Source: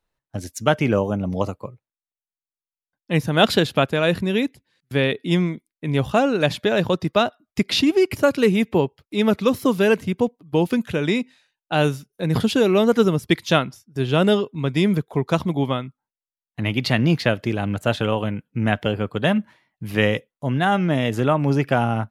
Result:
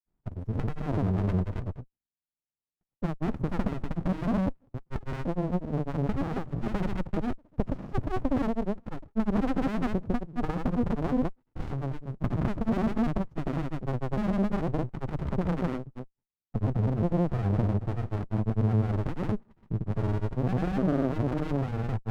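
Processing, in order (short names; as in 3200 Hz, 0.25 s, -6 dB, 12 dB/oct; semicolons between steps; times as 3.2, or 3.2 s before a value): elliptic low-pass 1100 Hz, stop band 40 dB; limiter -15 dBFS, peak gain reduction 10 dB; compressor 2:1, threshold -26 dBFS, peak gain reduction 5 dB; grains, spray 0.18 s; running maximum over 65 samples; gain +5 dB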